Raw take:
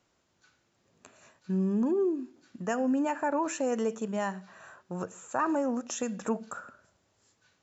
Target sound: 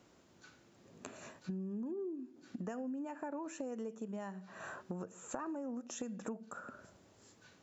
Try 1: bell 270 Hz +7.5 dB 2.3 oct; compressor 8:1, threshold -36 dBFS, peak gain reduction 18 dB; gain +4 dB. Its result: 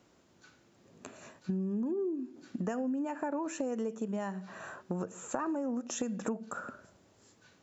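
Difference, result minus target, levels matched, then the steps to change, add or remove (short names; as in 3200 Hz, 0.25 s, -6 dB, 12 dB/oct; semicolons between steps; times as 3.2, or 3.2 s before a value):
compressor: peak gain reduction -7.5 dB
change: compressor 8:1, threshold -44.5 dBFS, peak gain reduction 25.5 dB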